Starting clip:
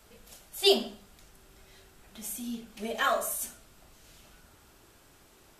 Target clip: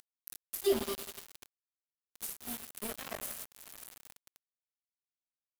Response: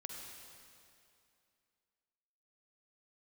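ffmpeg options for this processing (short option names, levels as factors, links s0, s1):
-filter_complex "[0:a]asplit=2[s0][s1];[s1]adelay=198.3,volume=0.0891,highshelf=f=4000:g=-4.46[s2];[s0][s2]amix=inputs=2:normalize=0,asplit=2[s3][s4];[1:a]atrim=start_sample=2205,asetrate=30429,aresample=44100[s5];[s4][s5]afir=irnorm=-1:irlink=0,volume=0.841[s6];[s3][s6]amix=inputs=2:normalize=0,aexciter=amount=5.2:drive=4.2:freq=9200,acrossover=split=490[s7][s8];[s8]acompressor=threshold=0.0178:ratio=10[s9];[s7][s9]amix=inputs=2:normalize=0,highshelf=f=5900:g=5.5,acompressor=mode=upward:threshold=0.0141:ratio=2.5,aeval=exprs='val(0)*gte(abs(val(0)),0.0447)':c=same,volume=0.531"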